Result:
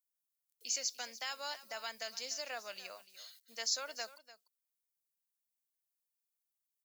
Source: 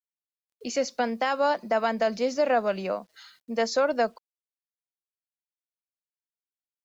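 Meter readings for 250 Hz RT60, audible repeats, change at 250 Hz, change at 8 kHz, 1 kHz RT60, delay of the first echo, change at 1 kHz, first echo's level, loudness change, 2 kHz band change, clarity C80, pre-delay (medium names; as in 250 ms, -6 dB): no reverb, 1, -32.0 dB, no reading, no reverb, 295 ms, -20.0 dB, -16.0 dB, -13.0 dB, -12.0 dB, no reverb, no reverb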